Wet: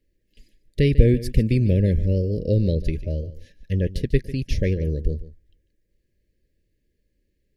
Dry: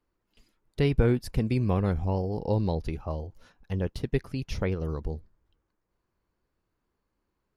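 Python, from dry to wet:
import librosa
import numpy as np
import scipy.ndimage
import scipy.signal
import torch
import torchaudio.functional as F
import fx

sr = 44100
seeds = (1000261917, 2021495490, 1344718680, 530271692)

y = fx.brickwall_bandstop(x, sr, low_hz=630.0, high_hz=1600.0)
y = fx.low_shelf(y, sr, hz=77.0, db=9.0)
y = y + 10.0 ** (-16.0 / 20.0) * np.pad(y, (int(146 * sr / 1000.0), 0))[:len(y)]
y = y * 10.0 ** (4.5 / 20.0)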